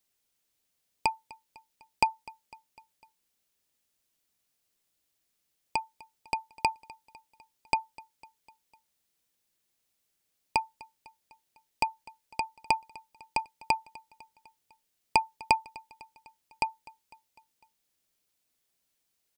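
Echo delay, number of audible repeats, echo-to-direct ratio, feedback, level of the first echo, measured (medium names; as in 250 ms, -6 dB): 251 ms, 3, -20.5 dB, 58%, -22.0 dB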